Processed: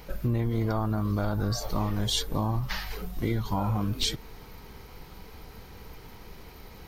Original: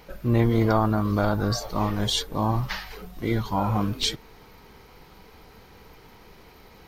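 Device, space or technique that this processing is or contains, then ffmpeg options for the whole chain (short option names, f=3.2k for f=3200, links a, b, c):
ASMR close-microphone chain: -af "lowshelf=f=150:g=8,acompressor=threshold=-24dB:ratio=6,highshelf=f=6.2k:g=6"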